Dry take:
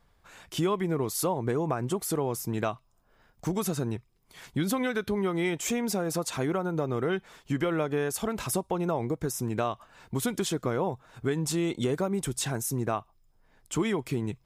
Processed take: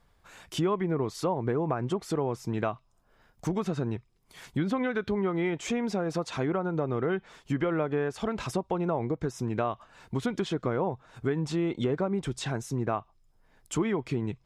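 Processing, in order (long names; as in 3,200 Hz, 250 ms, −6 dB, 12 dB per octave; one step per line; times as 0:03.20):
treble cut that deepens with the level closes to 2,100 Hz, closed at −23.5 dBFS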